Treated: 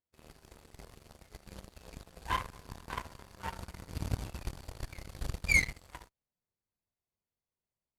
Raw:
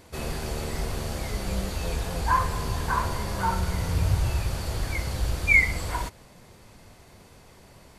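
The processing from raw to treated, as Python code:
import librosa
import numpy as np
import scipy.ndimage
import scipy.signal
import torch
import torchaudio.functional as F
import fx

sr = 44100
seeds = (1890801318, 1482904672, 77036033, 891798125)

y = fx.octave_divider(x, sr, octaves=1, level_db=1.0, at=(4.41, 5.72))
y = fx.cheby_harmonics(y, sr, harmonics=(7,), levels_db=(-17,), full_scale_db=-6.5)
y = F.gain(torch.from_numpy(y), -7.5).numpy()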